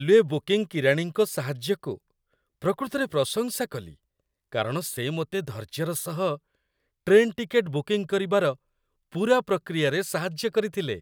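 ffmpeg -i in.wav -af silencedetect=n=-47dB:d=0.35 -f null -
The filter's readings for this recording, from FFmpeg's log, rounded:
silence_start: 1.97
silence_end: 2.62 | silence_duration: 0.64
silence_start: 3.94
silence_end: 4.52 | silence_duration: 0.58
silence_start: 6.37
silence_end: 7.07 | silence_duration: 0.69
silence_start: 8.56
silence_end: 9.12 | silence_duration: 0.56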